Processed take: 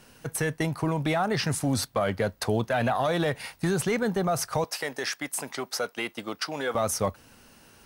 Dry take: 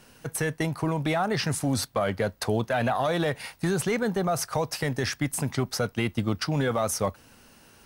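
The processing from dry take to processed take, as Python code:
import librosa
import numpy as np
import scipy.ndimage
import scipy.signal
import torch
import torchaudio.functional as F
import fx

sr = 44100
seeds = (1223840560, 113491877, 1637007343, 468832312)

y = fx.highpass(x, sr, hz=430.0, slope=12, at=(4.64, 6.75))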